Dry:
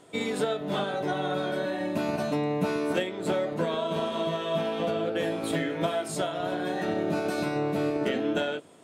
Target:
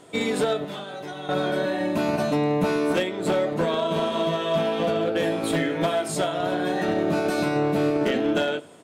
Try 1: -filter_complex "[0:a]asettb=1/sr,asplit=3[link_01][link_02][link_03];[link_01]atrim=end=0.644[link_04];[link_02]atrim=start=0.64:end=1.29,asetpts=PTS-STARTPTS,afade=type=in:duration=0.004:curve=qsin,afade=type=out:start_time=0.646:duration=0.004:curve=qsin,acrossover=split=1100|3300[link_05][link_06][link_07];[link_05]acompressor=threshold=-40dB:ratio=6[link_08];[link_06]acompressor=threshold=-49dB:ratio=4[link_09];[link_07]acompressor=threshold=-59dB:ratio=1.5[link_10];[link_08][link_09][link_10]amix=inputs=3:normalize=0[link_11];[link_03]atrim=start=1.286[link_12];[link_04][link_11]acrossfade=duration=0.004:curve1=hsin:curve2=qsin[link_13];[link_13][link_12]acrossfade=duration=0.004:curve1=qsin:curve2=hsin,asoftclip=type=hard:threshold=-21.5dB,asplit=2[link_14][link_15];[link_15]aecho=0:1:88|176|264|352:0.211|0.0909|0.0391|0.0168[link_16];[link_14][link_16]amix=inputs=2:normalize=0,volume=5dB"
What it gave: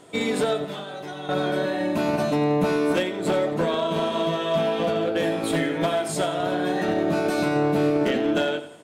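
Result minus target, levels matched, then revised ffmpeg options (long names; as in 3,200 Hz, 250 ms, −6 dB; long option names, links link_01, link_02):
echo-to-direct +10.5 dB
-filter_complex "[0:a]asettb=1/sr,asplit=3[link_01][link_02][link_03];[link_01]atrim=end=0.644[link_04];[link_02]atrim=start=0.64:end=1.29,asetpts=PTS-STARTPTS,afade=type=in:duration=0.004:curve=qsin,afade=type=out:start_time=0.646:duration=0.004:curve=qsin,acrossover=split=1100|3300[link_05][link_06][link_07];[link_05]acompressor=threshold=-40dB:ratio=6[link_08];[link_06]acompressor=threshold=-49dB:ratio=4[link_09];[link_07]acompressor=threshold=-59dB:ratio=1.5[link_10];[link_08][link_09][link_10]amix=inputs=3:normalize=0[link_11];[link_03]atrim=start=1.286[link_12];[link_04][link_11]acrossfade=duration=0.004:curve1=hsin:curve2=qsin[link_13];[link_13][link_12]acrossfade=duration=0.004:curve1=qsin:curve2=hsin,asoftclip=type=hard:threshold=-21.5dB,asplit=2[link_14][link_15];[link_15]aecho=0:1:88|176|264:0.0631|0.0271|0.0117[link_16];[link_14][link_16]amix=inputs=2:normalize=0,volume=5dB"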